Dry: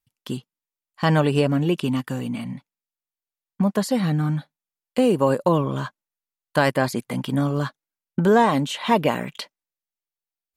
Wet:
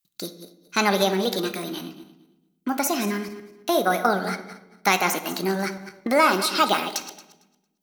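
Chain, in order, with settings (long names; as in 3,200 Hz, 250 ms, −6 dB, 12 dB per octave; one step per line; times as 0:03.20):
feedback delay that plays each chunk backwards 153 ms, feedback 42%, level −11.5 dB
spectral tilt +2.5 dB per octave
convolution reverb RT60 1.2 s, pre-delay 7 ms, DRR 10 dB
wrong playback speed 33 rpm record played at 45 rpm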